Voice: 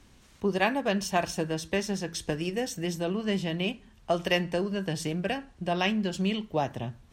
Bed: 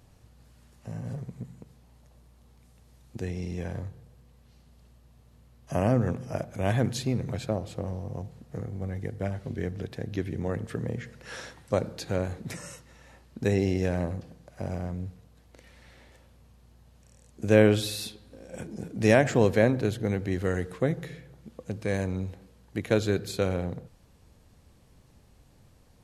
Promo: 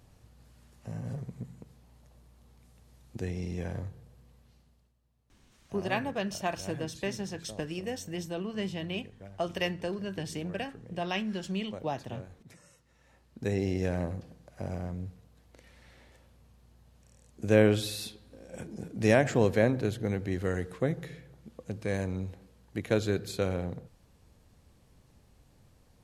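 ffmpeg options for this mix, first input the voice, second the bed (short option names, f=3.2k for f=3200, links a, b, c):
-filter_complex "[0:a]adelay=5300,volume=-5.5dB[a];[1:a]volume=12.5dB,afade=t=out:st=4.32:d=0.61:silence=0.16788,afade=t=in:st=12.74:d=1.12:silence=0.199526[b];[a][b]amix=inputs=2:normalize=0"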